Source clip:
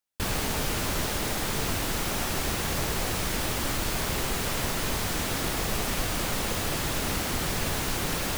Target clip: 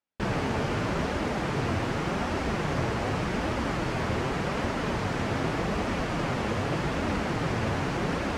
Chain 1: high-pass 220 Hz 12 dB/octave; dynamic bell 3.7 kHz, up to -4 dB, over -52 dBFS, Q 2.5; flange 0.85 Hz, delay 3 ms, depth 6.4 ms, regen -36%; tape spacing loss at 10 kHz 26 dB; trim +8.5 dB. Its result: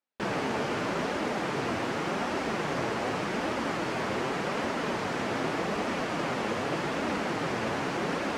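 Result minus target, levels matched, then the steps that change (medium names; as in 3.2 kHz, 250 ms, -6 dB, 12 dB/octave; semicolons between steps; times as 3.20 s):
125 Hz band -7.5 dB
change: high-pass 71 Hz 12 dB/octave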